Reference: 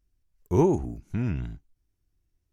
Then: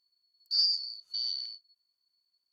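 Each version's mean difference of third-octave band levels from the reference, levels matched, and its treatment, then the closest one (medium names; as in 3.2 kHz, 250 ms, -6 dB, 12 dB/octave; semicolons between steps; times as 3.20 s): 20.0 dB: four frequency bands reordered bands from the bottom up 4321; trim -6.5 dB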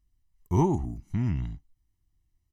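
2.0 dB: comb 1 ms, depth 75%; trim -3 dB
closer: second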